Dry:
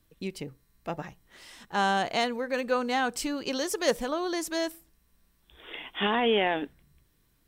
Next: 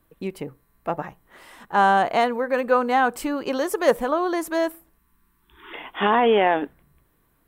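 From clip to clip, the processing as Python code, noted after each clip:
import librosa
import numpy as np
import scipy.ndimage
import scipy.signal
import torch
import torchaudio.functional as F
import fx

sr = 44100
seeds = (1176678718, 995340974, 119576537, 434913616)

y = fx.spec_erase(x, sr, start_s=4.99, length_s=0.74, low_hz=420.0, high_hz=850.0)
y = fx.curve_eq(y, sr, hz=(100.0, 1100.0, 5500.0, 12000.0), db=(0, 9, -9, 3))
y = F.gain(torch.from_numpy(y), 1.5).numpy()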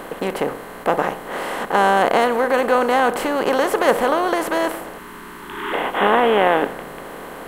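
y = fx.bin_compress(x, sr, power=0.4)
y = F.gain(torch.from_numpy(y), -1.5).numpy()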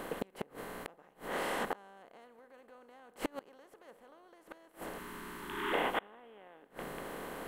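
y = fx.gate_flip(x, sr, shuts_db=-11.0, range_db=-31)
y = fx.peak_eq(y, sr, hz=990.0, db=-2.5, octaves=1.9)
y = F.gain(torch.from_numpy(y), -8.0).numpy()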